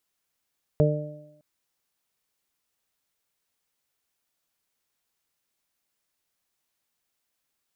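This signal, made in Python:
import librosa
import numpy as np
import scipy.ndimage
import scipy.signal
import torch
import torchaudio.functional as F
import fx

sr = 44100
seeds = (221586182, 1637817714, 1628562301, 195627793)

y = fx.additive(sr, length_s=0.61, hz=150.0, level_db=-17, upper_db=(-10.0, -3.0, -4), decay_s=0.79, upper_decays_s=(0.95, 0.59, 0.94))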